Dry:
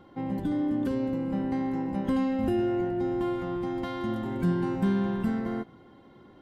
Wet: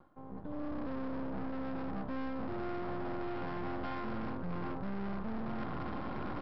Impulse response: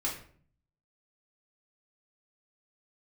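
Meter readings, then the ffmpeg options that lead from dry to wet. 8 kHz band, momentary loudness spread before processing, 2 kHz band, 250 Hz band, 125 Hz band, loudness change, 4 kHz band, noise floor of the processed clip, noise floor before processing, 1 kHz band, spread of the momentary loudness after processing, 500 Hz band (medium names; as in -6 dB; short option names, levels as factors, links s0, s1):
no reading, 5 LU, -4.0 dB, -12.0 dB, -10.0 dB, -11.0 dB, -8.5 dB, -47 dBFS, -54 dBFS, -4.5 dB, 1 LU, -10.5 dB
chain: -filter_complex "[0:a]equalizer=f=420:w=3.8:g=-14.5,aeval=exprs='max(val(0),0)':c=same,areverse,acompressor=threshold=0.00251:ratio=20,areverse,highshelf=f=1800:t=q:w=1.5:g=-10,asplit=6[s0][s1][s2][s3][s4][s5];[s1]adelay=130,afreqshift=-68,volume=0.126[s6];[s2]adelay=260,afreqshift=-136,volume=0.0759[s7];[s3]adelay=390,afreqshift=-204,volume=0.0452[s8];[s4]adelay=520,afreqshift=-272,volume=0.0272[s9];[s5]adelay=650,afreqshift=-340,volume=0.0164[s10];[s0][s6][s7][s8][s9][s10]amix=inputs=6:normalize=0,dynaudnorm=f=230:g=5:m=5.62,aresample=11025,asoftclip=type=hard:threshold=0.01,aresample=44100,volume=2.51"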